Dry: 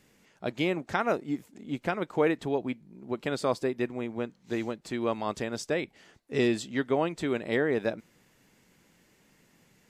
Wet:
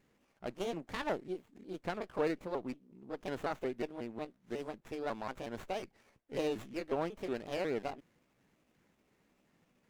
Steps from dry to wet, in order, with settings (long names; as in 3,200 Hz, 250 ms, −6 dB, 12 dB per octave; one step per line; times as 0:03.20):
pitch shifter gated in a rhythm +4 semitones, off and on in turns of 182 ms
windowed peak hold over 9 samples
level −7.5 dB